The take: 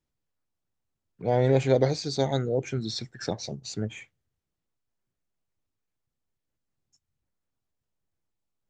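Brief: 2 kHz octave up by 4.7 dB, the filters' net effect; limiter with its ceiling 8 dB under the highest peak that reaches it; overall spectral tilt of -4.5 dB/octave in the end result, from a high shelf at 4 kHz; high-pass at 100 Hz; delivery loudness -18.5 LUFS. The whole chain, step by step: high-pass 100 Hz; peaking EQ 2 kHz +4.5 dB; treble shelf 4 kHz +5.5 dB; trim +11.5 dB; peak limiter -6 dBFS

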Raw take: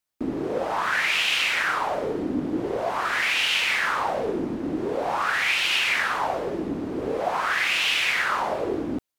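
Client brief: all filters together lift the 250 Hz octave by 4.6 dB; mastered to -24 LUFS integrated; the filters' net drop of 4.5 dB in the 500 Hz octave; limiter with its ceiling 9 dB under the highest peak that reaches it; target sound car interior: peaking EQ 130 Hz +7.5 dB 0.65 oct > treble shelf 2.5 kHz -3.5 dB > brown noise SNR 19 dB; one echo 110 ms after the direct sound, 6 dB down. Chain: peaking EQ 250 Hz +8 dB; peaking EQ 500 Hz -9 dB; peak limiter -20 dBFS; peaking EQ 130 Hz +7.5 dB 0.65 oct; treble shelf 2.5 kHz -3.5 dB; delay 110 ms -6 dB; brown noise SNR 19 dB; trim +3.5 dB

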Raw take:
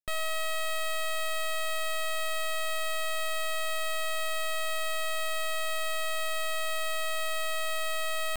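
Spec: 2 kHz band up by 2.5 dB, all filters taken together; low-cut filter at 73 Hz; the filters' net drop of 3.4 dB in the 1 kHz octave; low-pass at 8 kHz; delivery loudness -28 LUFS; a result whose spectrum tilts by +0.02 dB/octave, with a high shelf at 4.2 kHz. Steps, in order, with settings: high-pass 73 Hz; low-pass 8 kHz; peaking EQ 1 kHz -7.5 dB; peaking EQ 2 kHz +3 dB; treble shelf 4.2 kHz +6 dB; trim +2.5 dB

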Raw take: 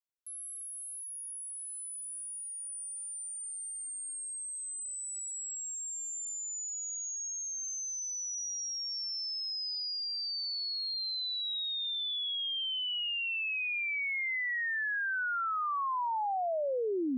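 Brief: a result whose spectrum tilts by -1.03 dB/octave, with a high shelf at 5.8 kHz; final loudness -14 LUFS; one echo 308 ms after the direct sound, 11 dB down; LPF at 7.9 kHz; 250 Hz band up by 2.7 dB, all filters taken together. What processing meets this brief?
low-pass 7.9 kHz; peaking EQ 250 Hz +3.5 dB; treble shelf 5.8 kHz +8 dB; delay 308 ms -11 dB; trim +17.5 dB

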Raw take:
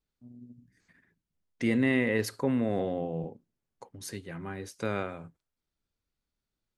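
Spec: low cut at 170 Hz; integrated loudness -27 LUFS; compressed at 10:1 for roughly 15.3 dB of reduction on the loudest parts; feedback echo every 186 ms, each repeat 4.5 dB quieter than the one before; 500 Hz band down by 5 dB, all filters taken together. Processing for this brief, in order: high-pass 170 Hz; peaking EQ 500 Hz -6 dB; compression 10:1, threshold -40 dBFS; feedback delay 186 ms, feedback 60%, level -4.5 dB; trim +17.5 dB

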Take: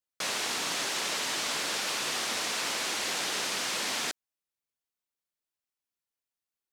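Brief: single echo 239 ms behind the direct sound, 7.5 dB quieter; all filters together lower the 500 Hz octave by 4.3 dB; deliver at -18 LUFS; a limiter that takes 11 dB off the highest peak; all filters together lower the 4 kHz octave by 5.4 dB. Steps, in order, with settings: peaking EQ 500 Hz -5.5 dB; peaking EQ 4 kHz -7 dB; peak limiter -32.5 dBFS; delay 239 ms -7.5 dB; trim +21 dB

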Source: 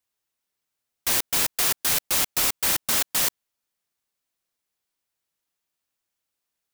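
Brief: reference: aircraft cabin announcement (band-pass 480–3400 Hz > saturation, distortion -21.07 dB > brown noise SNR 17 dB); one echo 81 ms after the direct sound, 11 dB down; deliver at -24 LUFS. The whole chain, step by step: band-pass 480–3400 Hz; delay 81 ms -11 dB; saturation -21.5 dBFS; brown noise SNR 17 dB; trim +8 dB

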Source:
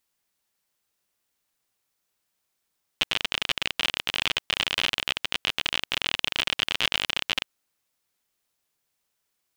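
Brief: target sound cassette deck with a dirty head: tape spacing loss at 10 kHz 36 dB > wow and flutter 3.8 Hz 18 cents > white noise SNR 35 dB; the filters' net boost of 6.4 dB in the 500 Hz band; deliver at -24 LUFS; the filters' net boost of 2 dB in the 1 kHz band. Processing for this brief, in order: tape spacing loss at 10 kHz 36 dB; peaking EQ 500 Hz +9 dB; peaking EQ 1 kHz +4.5 dB; wow and flutter 3.8 Hz 18 cents; white noise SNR 35 dB; trim +9.5 dB

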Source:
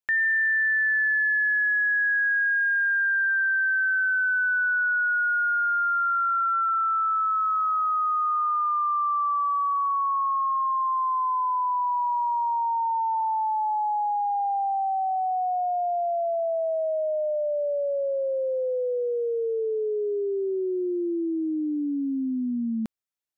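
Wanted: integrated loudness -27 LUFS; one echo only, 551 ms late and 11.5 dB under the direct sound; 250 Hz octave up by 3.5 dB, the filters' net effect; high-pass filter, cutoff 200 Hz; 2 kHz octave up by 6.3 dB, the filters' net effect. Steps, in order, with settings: high-pass 200 Hz; peaking EQ 250 Hz +5.5 dB; peaking EQ 2 kHz +8.5 dB; delay 551 ms -11.5 dB; trim -8 dB

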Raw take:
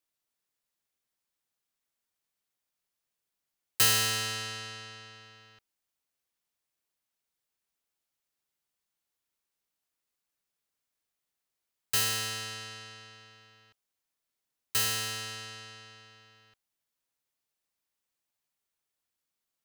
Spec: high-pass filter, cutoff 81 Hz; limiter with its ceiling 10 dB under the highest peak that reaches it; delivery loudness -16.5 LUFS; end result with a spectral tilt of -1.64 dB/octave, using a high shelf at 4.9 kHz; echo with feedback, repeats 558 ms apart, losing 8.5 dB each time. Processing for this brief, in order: high-pass 81 Hz; treble shelf 4.9 kHz -5 dB; peak limiter -25 dBFS; feedback delay 558 ms, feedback 38%, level -8.5 dB; trim +20.5 dB

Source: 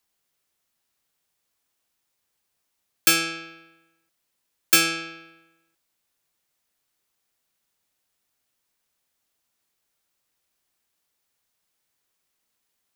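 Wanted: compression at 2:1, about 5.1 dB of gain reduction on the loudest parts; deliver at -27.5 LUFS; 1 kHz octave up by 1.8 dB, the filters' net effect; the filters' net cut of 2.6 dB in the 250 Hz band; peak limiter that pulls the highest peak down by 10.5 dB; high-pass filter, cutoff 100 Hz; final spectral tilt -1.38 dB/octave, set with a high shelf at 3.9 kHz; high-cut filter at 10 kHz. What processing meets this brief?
high-pass 100 Hz; low-pass 10 kHz; peaking EQ 250 Hz -4.5 dB; peaking EQ 1 kHz +4 dB; treble shelf 3.9 kHz -6.5 dB; compression 2:1, threshold -26 dBFS; trim +5.5 dB; peak limiter -15 dBFS

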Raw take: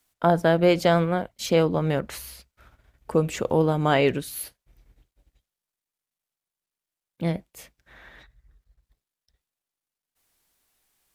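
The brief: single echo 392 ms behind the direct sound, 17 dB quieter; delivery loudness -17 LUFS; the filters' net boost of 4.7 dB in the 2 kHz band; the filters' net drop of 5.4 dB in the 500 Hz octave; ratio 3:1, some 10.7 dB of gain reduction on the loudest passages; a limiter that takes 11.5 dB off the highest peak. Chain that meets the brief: peaking EQ 500 Hz -7 dB; peaking EQ 2 kHz +6.5 dB; compression 3:1, threshold -31 dBFS; peak limiter -29 dBFS; delay 392 ms -17 dB; trim +23 dB

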